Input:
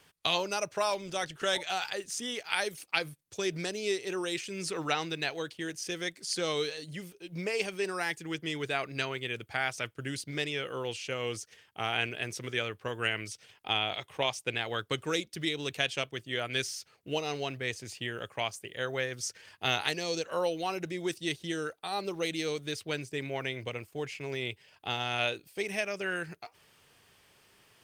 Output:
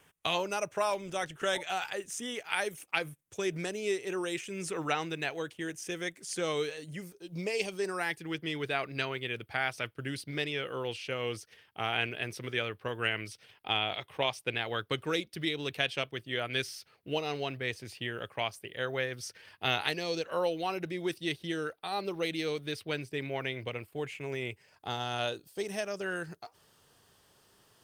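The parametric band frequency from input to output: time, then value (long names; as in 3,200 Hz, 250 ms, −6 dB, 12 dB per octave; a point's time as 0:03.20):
parametric band −11.5 dB 0.58 octaves
0:06.89 4,500 Hz
0:07.59 1,200 Hz
0:08.11 7,000 Hz
0:23.77 7,000 Hz
0:25.06 2,300 Hz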